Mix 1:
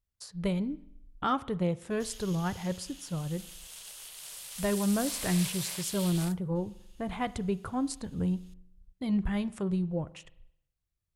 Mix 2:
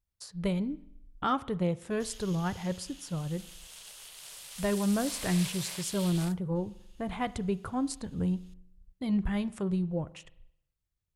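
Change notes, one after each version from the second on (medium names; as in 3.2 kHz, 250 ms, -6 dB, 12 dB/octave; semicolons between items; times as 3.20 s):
background: add treble shelf 9.4 kHz -7 dB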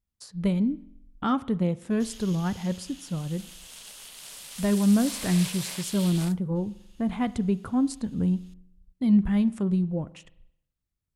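background +3.5 dB; master: add peaking EQ 230 Hz +11 dB 0.64 oct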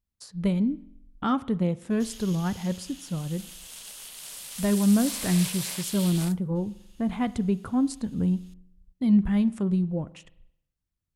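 background: add treble shelf 9.4 kHz +7 dB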